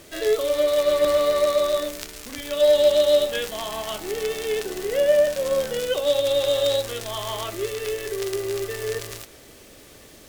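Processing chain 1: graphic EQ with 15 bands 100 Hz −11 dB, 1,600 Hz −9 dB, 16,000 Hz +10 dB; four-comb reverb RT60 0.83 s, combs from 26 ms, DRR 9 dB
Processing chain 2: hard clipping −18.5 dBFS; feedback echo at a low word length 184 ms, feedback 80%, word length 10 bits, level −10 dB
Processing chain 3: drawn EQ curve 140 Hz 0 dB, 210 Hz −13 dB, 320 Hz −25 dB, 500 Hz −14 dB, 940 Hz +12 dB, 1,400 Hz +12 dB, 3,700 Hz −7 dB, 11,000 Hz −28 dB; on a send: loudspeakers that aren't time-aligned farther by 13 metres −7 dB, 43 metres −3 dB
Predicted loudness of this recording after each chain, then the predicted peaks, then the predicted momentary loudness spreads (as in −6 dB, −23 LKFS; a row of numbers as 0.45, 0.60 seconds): −23.0, −23.5, −23.0 LKFS; −6.0, −12.5, −7.0 dBFS; 10, 9, 13 LU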